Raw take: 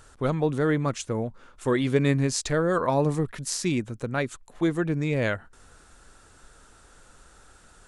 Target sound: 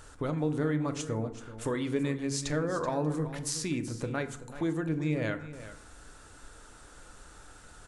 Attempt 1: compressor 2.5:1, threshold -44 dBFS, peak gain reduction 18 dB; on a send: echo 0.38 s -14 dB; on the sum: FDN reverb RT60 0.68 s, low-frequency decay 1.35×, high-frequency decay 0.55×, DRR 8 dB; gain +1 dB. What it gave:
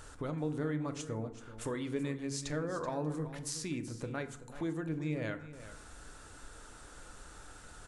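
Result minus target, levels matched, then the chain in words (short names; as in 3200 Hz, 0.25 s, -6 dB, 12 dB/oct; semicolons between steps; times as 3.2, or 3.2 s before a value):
compressor: peak gain reduction +5.5 dB
compressor 2.5:1, threshold -34.5 dBFS, peak gain reduction 12 dB; on a send: echo 0.38 s -14 dB; on the sum: FDN reverb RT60 0.68 s, low-frequency decay 1.35×, high-frequency decay 0.55×, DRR 8 dB; gain +1 dB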